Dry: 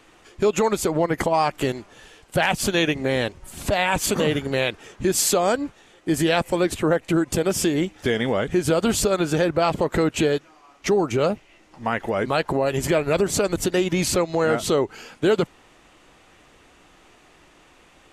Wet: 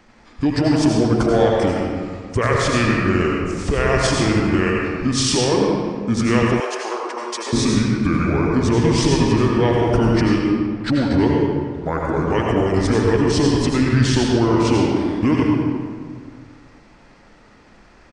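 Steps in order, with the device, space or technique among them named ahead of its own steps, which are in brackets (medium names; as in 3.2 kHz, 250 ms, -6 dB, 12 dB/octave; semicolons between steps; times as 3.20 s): monster voice (pitch shift -6 st; bass shelf 100 Hz +6.5 dB; reverberation RT60 1.9 s, pre-delay 76 ms, DRR -1.5 dB); 6.60–7.53 s: inverse Chebyshev high-pass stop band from 180 Hz, stop band 50 dB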